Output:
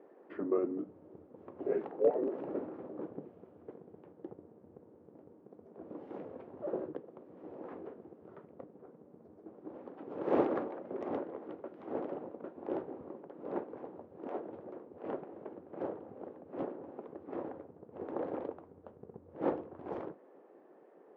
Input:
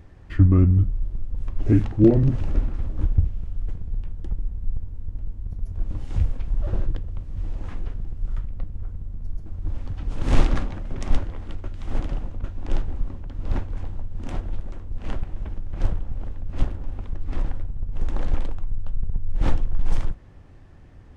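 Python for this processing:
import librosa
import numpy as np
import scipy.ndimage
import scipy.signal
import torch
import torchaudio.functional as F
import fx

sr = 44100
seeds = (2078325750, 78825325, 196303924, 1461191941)

y = fx.spec_gate(x, sr, threshold_db=-15, keep='weak')
y = fx.ladder_bandpass(y, sr, hz=500.0, resonance_pct=40)
y = F.gain(torch.from_numpy(y), 11.5).numpy()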